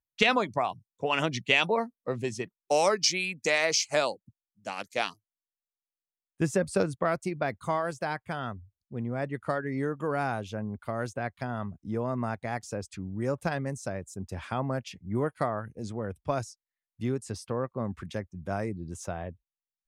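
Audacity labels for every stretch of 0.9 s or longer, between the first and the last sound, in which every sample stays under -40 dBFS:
5.110000	6.400000	silence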